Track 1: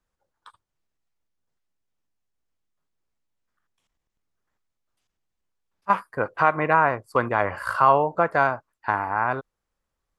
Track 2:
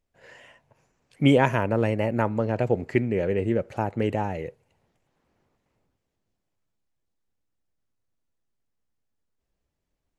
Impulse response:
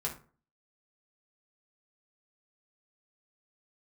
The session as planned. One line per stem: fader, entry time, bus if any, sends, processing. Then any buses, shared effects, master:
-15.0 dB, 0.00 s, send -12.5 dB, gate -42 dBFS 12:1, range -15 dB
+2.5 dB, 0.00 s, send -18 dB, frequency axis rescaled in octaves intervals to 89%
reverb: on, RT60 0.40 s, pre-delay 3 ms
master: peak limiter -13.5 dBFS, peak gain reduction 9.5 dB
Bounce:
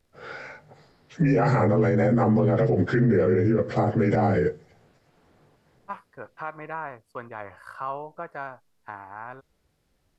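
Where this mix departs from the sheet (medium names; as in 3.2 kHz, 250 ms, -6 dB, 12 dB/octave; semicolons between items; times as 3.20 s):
stem 1: send off; stem 2 +2.5 dB -> +13.0 dB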